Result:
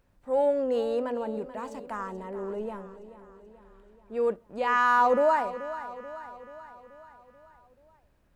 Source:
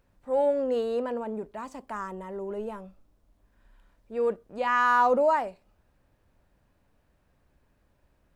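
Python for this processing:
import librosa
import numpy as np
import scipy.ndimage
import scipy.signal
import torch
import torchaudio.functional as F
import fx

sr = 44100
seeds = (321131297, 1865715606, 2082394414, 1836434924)

y = fx.high_shelf(x, sr, hz=4900.0, db=-5.5, at=(1.96, 4.14))
y = fx.echo_feedback(y, sr, ms=433, feedback_pct=56, wet_db=-14.0)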